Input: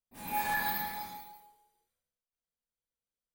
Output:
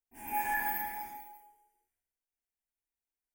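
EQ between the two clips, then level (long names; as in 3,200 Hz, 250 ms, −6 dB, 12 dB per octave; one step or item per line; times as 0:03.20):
phaser with its sweep stopped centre 810 Hz, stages 8
0.0 dB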